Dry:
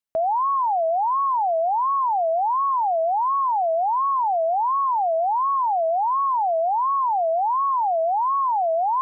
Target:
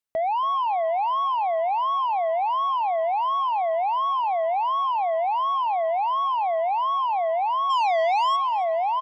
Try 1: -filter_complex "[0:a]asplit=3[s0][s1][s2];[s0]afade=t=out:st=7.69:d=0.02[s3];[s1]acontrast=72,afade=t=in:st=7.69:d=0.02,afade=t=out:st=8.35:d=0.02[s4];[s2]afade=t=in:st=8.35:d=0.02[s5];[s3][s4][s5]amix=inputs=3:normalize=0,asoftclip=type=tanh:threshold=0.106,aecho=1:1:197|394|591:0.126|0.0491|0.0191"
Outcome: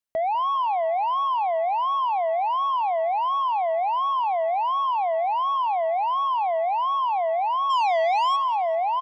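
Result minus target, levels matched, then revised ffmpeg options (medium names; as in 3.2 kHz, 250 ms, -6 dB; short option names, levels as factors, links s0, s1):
echo 82 ms early
-filter_complex "[0:a]asplit=3[s0][s1][s2];[s0]afade=t=out:st=7.69:d=0.02[s3];[s1]acontrast=72,afade=t=in:st=7.69:d=0.02,afade=t=out:st=8.35:d=0.02[s4];[s2]afade=t=in:st=8.35:d=0.02[s5];[s3][s4][s5]amix=inputs=3:normalize=0,asoftclip=type=tanh:threshold=0.106,aecho=1:1:279|558|837:0.126|0.0491|0.0191"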